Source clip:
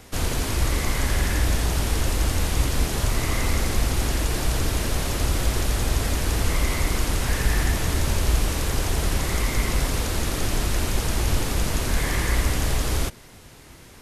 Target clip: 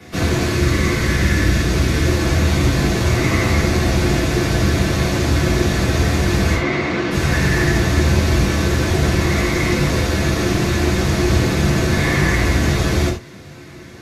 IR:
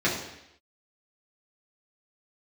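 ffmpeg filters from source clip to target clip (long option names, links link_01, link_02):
-filter_complex "[0:a]asettb=1/sr,asplit=3[link_01][link_02][link_03];[link_01]atrim=end=0.484[link_04];[link_02]atrim=start=0.48:end=2.06,asetpts=PTS-STARTPTS,afade=type=in:duration=0.004:curve=qsin,afade=type=out:start_time=1.576:duration=0.004:curve=qsin,equalizer=frequency=780:width=2.2:gain=-6.5[link_05];[link_03]atrim=start=2.056[link_06];[link_04][link_05]acrossfade=duration=0.004:curve1=hsin:curve2=qsin[link_07];[link_07][link_06]acrossfade=duration=0.004:curve1=qsin:curve2=hsin,asplit=3[link_08][link_09][link_10];[link_08]afade=type=out:start_time=6.54:duration=0.02[link_11];[link_09]highpass=170,lowpass=3600,afade=type=in:start_time=6.54:duration=0.02,afade=type=out:start_time=7.1:duration=0.02[link_12];[link_10]afade=type=in:start_time=7.1:duration=0.02[link_13];[link_11][link_12][link_13]amix=inputs=3:normalize=0[link_14];[1:a]atrim=start_sample=2205,atrim=end_sample=4410[link_15];[link_14][link_15]afir=irnorm=-1:irlink=0,volume=-5dB"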